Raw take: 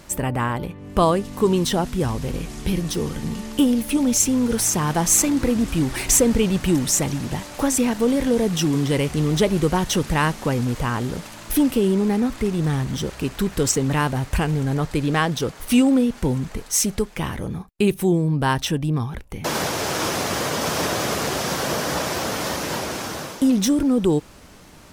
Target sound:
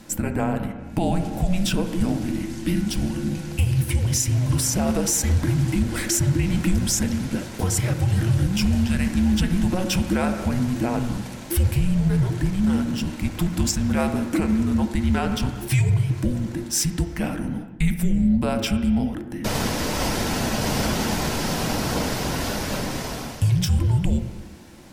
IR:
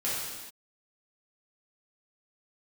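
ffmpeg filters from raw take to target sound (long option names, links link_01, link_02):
-filter_complex "[0:a]afreqshift=-370,bandreject=frequency=1200:width=8.3,asplit=2[link_01][link_02];[1:a]atrim=start_sample=2205,lowpass=2200[link_03];[link_02][link_03]afir=irnorm=-1:irlink=0,volume=-12.5dB[link_04];[link_01][link_04]amix=inputs=2:normalize=0,alimiter=limit=-10dB:level=0:latency=1:release=105,volume=-1.5dB"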